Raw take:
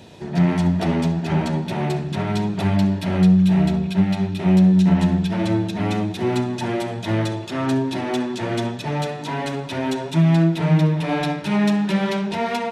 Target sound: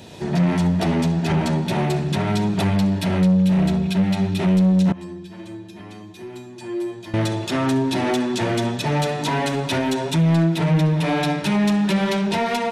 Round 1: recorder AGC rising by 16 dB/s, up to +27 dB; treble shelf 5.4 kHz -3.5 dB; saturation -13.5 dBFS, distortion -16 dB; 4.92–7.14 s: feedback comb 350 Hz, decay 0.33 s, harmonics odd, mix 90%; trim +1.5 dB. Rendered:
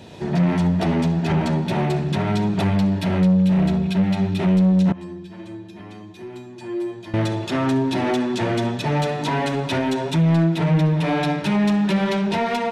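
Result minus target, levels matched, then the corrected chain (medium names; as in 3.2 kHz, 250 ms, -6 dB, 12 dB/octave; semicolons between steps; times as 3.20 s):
8 kHz band -5.5 dB
recorder AGC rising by 16 dB/s, up to +27 dB; treble shelf 5.4 kHz +5.5 dB; saturation -13.5 dBFS, distortion -16 dB; 4.92–7.14 s: feedback comb 350 Hz, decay 0.33 s, harmonics odd, mix 90%; trim +1.5 dB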